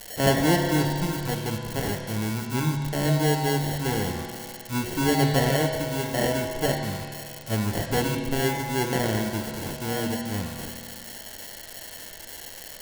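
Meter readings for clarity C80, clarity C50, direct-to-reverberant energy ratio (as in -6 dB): 4.0 dB, 3.0 dB, 1.0 dB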